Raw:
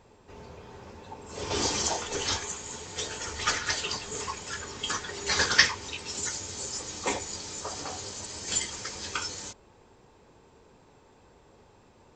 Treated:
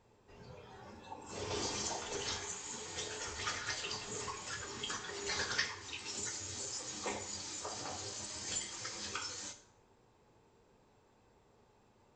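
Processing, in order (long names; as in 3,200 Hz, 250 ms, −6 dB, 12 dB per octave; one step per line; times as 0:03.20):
noise reduction from a noise print of the clip's start 8 dB
downward compressor 2 to 1, threshold −40 dBFS, peak gain reduction 14.5 dB
dense smooth reverb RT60 0.75 s, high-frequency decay 0.7×, DRR 6.5 dB
level −3 dB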